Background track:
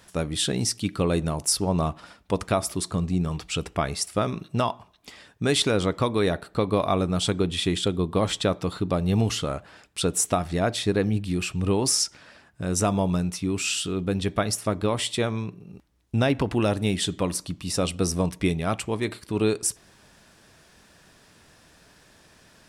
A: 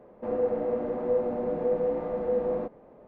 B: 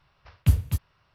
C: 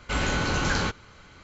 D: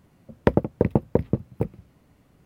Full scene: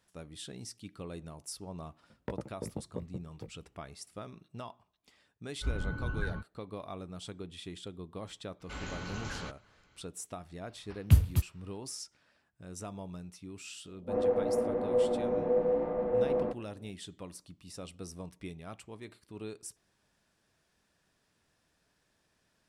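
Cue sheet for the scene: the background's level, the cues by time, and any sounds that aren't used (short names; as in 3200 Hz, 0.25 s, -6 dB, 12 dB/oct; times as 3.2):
background track -19.5 dB
1.81 add D -16.5 dB + chorus 1.5 Hz, delay 15 ms, depth 4.3 ms
5.52 add C -9.5 dB + spectral expander 2.5:1
8.6 add C -15.5 dB
10.64 add B -2 dB
13.85 add A -1.5 dB + low-pass opened by the level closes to 310 Hz, open at -23 dBFS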